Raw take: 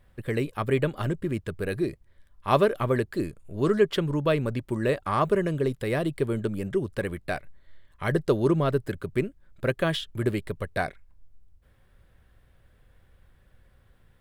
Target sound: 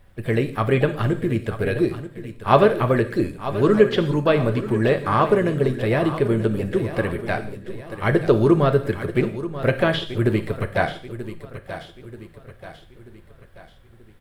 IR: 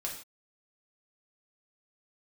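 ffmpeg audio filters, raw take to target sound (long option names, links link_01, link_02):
-filter_complex "[0:a]aecho=1:1:934|1868|2802|3736|4670:0.224|0.103|0.0474|0.0218|0.01,asplit=2[link_01][link_02];[link_02]asetrate=58866,aresample=44100,atempo=0.749154,volume=-17dB[link_03];[link_01][link_03]amix=inputs=2:normalize=0,asplit=2[link_04][link_05];[1:a]atrim=start_sample=2205,adelay=9[link_06];[link_05][link_06]afir=irnorm=-1:irlink=0,volume=-8.5dB[link_07];[link_04][link_07]amix=inputs=2:normalize=0,acrossover=split=4200[link_08][link_09];[link_09]acompressor=threshold=-53dB:ratio=4:attack=1:release=60[link_10];[link_08][link_10]amix=inputs=2:normalize=0,volume=5.5dB"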